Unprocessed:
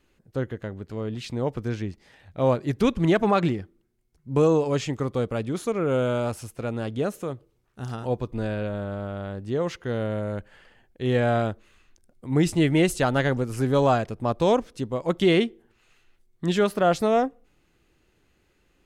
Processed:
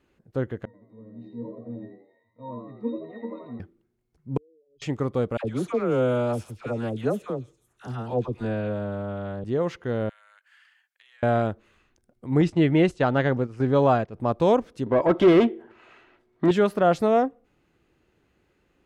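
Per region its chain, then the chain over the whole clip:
0.65–3.6 HPF 150 Hz 24 dB/oct + octave resonator A#, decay 0.32 s + frequency-shifting echo 83 ms, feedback 39%, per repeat +86 Hz, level -6 dB
4.37–4.82 formant sharpening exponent 3 + inverse Chebyshev band-stop 100–2200 Hz + air absorption 220 m
5.37–9.44 dispersion lows, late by 76 ms, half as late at 950 Hz + delay with a stepping band-pass 0.169 s, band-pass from 3600 Hz, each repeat 0.7 oct, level -10 dB
10.09–11.23 HPF 1400 Hz 24 dB/oct + high shelf 5500 Hz +5 dB + compressor 10:1, threshold -50 dBFS
12.41–14.14 LPF 5500 Hz + gate -30 dBFS, range -9 dB
14.86–16.51 overdrive pedal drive 25 dB, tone 1100 Hz, clips at -10 dBFS + high shelf 8300 Hz -7.5 dB + comb 3.1 ms, depth 30%
whole clip: HPF 79 Hz 6 dB/oct; high shelf 2800 Hz -10 dB; gain +1.5 dB

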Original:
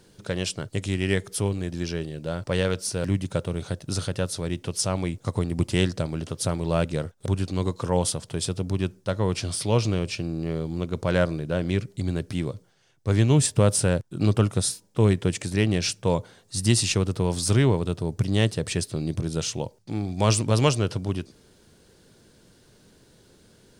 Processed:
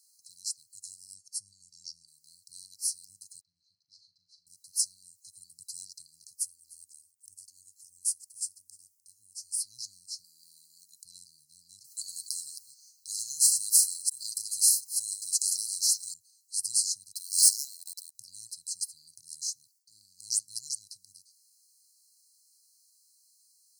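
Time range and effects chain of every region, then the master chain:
1.14–2.08 LPF 6700 Hz + comb 1.1 ms, depth 64%
3.41–4.47 LPF 3000 Hz 24 dB/oct + low shelf 460 Hz -11.5 dB + flutter echo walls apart 6.8 m, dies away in 0.24 s
6.33–9.6 bell 2400 Hz +3.5 dB 1.9 oct + fixed phaser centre 770 Hz, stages 8 + echo 0.302 s -21.5 dB
10.24–11.05 HPF 210 Hz + high shelf 7300 Hz +8 dB
11.84–16.14 reverse delay 0.15 s, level -10 dB + comb 7.3 ms, depth 52% + spectral compressor 2:1
17.13–18.15 resonant high-pass 1700 Hz, resonance Q 3.1 + sample leveller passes 3
whole clip: passive tone stack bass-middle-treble 10-0-10; FFT band-reject 330–4000 Hz; differentiator

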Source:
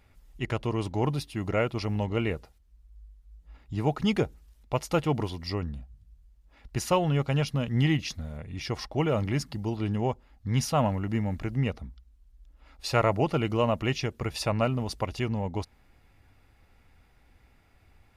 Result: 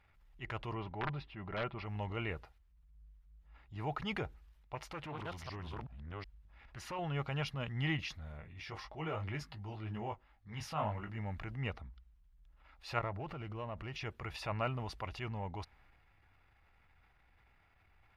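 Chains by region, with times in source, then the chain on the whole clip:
0.75–1.86 wrapped overs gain 17 dB + air absorption 300 m + comb 5.1 ms, depth 31%
4.75–6.99 reverse delay 0.373 s, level -1.5 dB + compressor 3:1, threshold -30 dBFS + Doppler distortion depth 0.32 ms
8.41–11.18 flange 1.9 Hz, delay 4.2 ms, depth 8.4 ms, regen -38% + doubler 19 ms -6.5 dB
12.99–13.96 tilt -1.5 dB/oct + compressor, threshold -28 dBFS + running maximum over 3 samples
whole clip: graphic EQ 250/500/8000 Hz -9/-7/-3 dB; transient shaper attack -6 dB, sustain +4 dB; tone controls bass -6 dB, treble -14 dB; gain -2.5 dB

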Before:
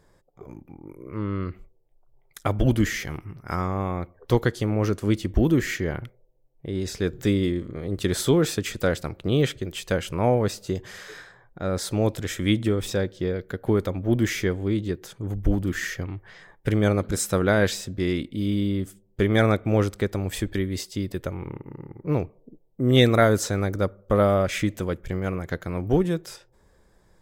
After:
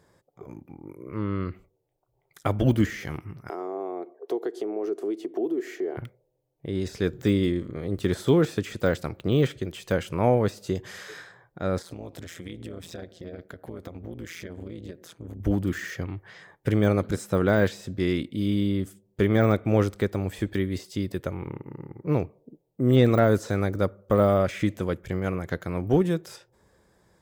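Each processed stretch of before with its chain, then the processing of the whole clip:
3.49–5.97 ladder high-pass 270 Hz, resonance 40% + compressor 2.5:1, threshold -42 dBFS + small resonant body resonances 400/680 Hz, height 16 dB, ringing for 25 ms
11.82–15.4 compressor 8:1, threshold -30 dBFS + AM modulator 170 Hz, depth 90%
whole clip: de-esser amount 95%; HPF 75 Hz

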